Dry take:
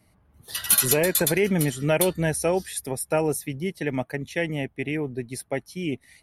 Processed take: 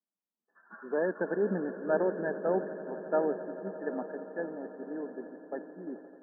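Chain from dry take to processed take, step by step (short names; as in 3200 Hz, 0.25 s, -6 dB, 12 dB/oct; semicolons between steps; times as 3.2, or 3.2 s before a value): brick-wall FIR band-pass 180–1800 Hz; on a send: swelling echo 87 ms, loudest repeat 8, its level -17 dB; on the sum: three-band expander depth 70%; gain -7.5 dB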